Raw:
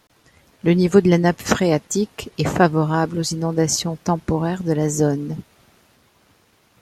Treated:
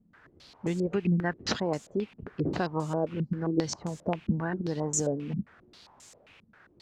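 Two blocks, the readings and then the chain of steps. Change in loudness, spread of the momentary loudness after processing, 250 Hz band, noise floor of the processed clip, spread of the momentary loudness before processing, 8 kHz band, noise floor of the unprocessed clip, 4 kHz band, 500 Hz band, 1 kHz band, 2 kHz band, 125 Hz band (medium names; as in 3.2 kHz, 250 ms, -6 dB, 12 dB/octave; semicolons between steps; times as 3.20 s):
-11.5 dB, 6 LU, -11.0 dB, -62 dBFS, 10 LU, -10.0 dB, -59 dBFS, -11.0 dB, -12.0 dB, -13.0 dB, -11.5 dB, -11.0 dB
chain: compression 2.5:1, threshold -22 dBFS, peak gain reduction 10.5 dB; word length cut 8-bit, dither triangular; step-sequenced low-pass 7.5 Hz 210–7200 Hz; trim -8 dB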